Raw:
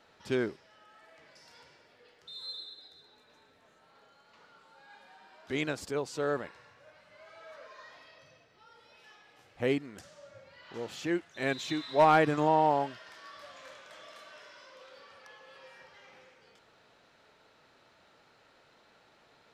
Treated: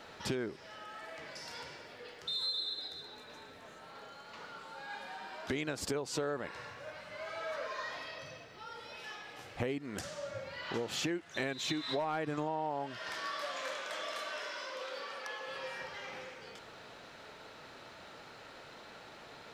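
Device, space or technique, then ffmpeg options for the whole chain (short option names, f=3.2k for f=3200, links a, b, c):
serial compression, peaks first: -filter_complex "[0:a]asettb=1/sr,asplit=3[a][b][c];[a]atrim=end=13.324[d];[b]atrim=start=13.32:end=15.48,asetpts=PTS-STARTPTS,afade=t=in:d=0.004:c=qsin,afade=t=out:st=2.156:d=0.004:c=qsin,highpass=250[e];[c]atrim=start=15.476[f];[d][e]acrossfade=d=0.004:c1=hsin:c2=qsin[g];[g][f]acrossfade=d=0.004:c1=qsin:c2=hsin,acompressor=threshold=-39dB:ratio=6,acompressor=threshold=-45dB:ratio=2.5,volume=11dB"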